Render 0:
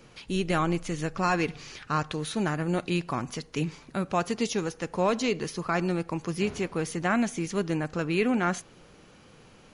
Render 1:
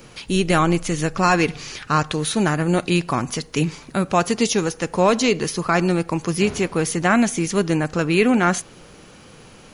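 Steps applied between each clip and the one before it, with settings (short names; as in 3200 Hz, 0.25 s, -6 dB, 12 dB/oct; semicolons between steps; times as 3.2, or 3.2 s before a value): high shelf 8200 Hz +9 dB; gain +8.5 dB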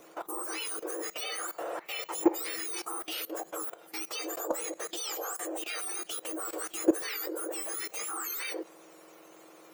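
spectrum mirrored in octaves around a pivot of 1800 Hz; level quantiser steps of 18 dB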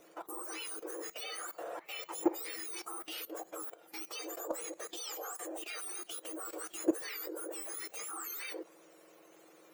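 bin magnitudes rounded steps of 15 dB; gain -5.5 dB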